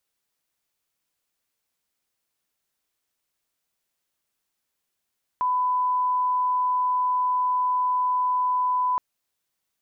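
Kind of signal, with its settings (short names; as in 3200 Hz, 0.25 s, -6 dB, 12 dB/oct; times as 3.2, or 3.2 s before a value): line-up tone -20 dBFS 3.57 s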